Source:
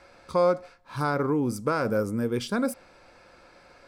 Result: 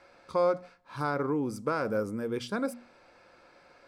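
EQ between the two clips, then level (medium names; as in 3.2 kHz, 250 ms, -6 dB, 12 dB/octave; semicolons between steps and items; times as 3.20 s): bass shelf 83 Hz -10 dB; treble shelf 7.2 kHz -7.5 dB; hum notches 60/120/180/240 Hz; -3.5 dB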